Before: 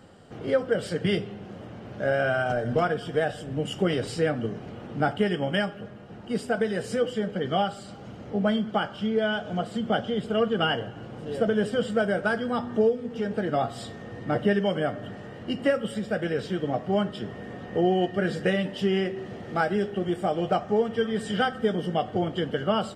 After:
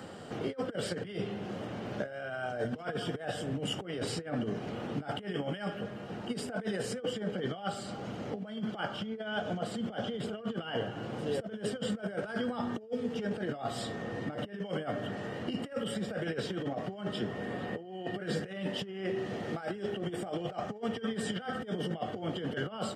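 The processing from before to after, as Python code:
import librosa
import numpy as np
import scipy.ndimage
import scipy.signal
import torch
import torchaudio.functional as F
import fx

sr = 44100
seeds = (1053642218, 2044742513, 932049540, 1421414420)

y = fx.peak_eq(x, sr, hz=6000.0, db=-8.5, octaves=0.21, at=(17.45, 18.22))
y = fx.over_compress(y, sr, threshold_db=-30.0, ratio=-0.5)
y = fx.highpass(y, sr, hz=140.0, slope=6)
y = fx.band_squash(y, sr, depth_pct=40)
y = y * librosa.db_to_amplitude(-3.5)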